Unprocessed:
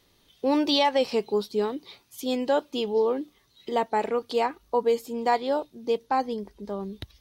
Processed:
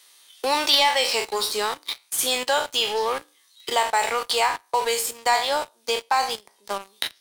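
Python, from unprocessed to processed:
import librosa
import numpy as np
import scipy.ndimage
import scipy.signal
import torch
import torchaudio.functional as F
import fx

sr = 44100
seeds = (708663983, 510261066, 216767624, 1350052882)

p1 = fx.spec_trails(x, sr, decay_s=0.35)
p2 = scipy.signal.sosfilt(scipy.signal.butter(2, 1100.0, 'highpass', fs=sr, output='sos'), p1)
p3 = fx.peak_eq(p2, sr, hz=9000.0, db=12.0, octaves=0.71)
p4 = fx.level_steps(p3, sr, step_db=22)
p5 = p3 + (p4 * librosa.db_to_amplitude(2.0))
p6 = fx.leveller(p5, sr, passes=3)
p7 = fx.band_squash(p6, sr, depth_pct=40)
y = p7 * librosa.db_to_amplitude(-3.0)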